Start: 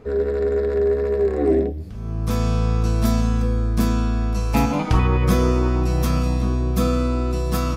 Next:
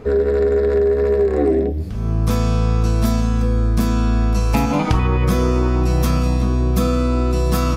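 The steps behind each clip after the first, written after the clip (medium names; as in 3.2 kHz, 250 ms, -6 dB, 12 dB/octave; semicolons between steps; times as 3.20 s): compression, threshold -21 dBFS, peak gain reduction 9 dB; trim +8 dB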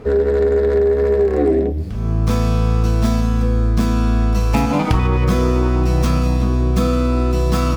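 sliding maximum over 3 samples; trim +1 dB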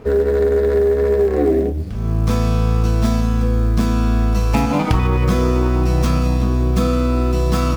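companding laws mixed up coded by A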